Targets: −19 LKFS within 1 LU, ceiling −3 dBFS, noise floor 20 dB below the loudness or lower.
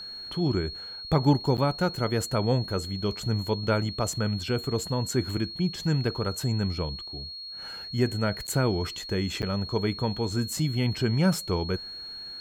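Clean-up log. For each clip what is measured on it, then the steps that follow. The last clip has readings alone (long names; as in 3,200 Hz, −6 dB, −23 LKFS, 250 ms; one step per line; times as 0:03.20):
number of dropouts 3; longest dropout 8.8 ms; interfering tone 4,300 Hz; level of the tone −37 dBFS; integrated loudness −28.0 LKFS; sample peak −9.5 dBFS; target loudness −19.0 LKFS
→ repair the gap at 0:01.57/0:08.47/0:09.42, 8.8 ms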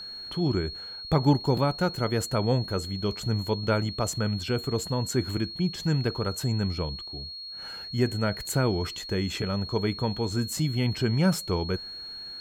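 number of dropouts 0; interfering tone 4,300 Hz; level of the tone −37 dBFS
→ notch filter 4,300 Hz, Q 30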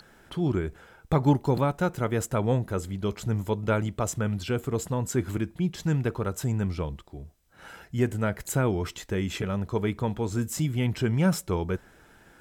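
interfering tone none found; integrated loudness −28.0 LKFS; sample peak −10.0 dBFS; target loudness −19.0 LKFS
→ level +9 dB
brickwall limiter −3 dBFS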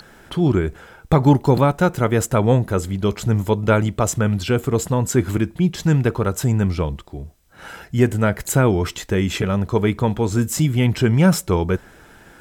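integrated loudness −19.5 LKFS; sample peak −3.0 dBFS; background noise floor −48 dBFS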